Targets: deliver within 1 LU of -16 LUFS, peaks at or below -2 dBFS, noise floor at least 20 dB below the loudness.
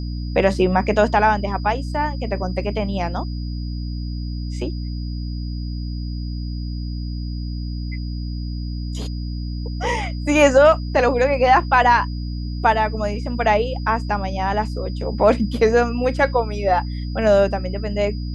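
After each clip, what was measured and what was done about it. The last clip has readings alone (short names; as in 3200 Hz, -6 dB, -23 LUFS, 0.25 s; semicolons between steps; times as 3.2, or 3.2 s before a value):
hum 60 Hz; harmonics up to 300 Hz; hum level -24 dBFS; steady tone 4900 Hz; tone level -42 dBFS; loudness -21.0 LUFS; peak -2.5 dBFS; loudness target -16.0 LUFS
-> notches 60/120/180/240/300 Hz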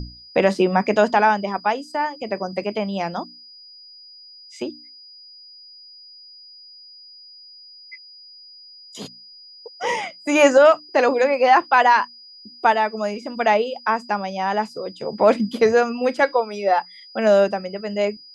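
hum none; steady tone 4900 Hz; tone level -42 dBFS
-> notch 4900 Hz, Q 30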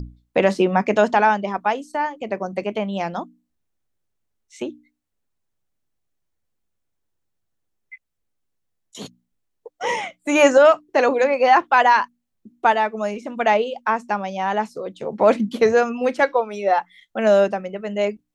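steady tone none; loudness -19.5 LUFS; peak -3.0 dBFS; loudness target -16.0 LUFS
-> gain +3.5 dB; limiter -2 dBFS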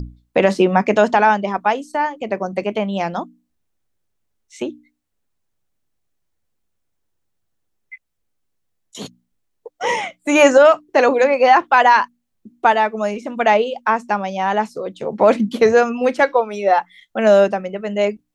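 loudness -16.5 LUFS; peak -2.0 dBFS; noise floor -72 dBFS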